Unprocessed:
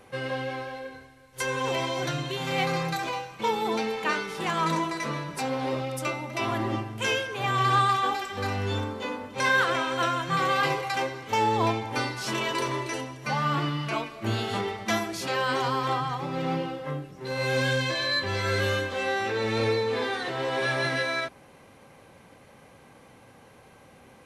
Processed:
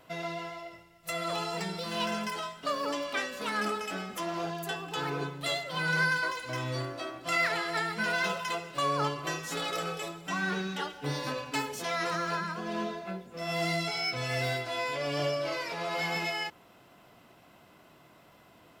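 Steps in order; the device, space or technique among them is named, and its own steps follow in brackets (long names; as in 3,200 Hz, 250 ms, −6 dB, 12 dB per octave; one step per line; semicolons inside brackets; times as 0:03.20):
nightcore (speed change +29%)
level −5 dB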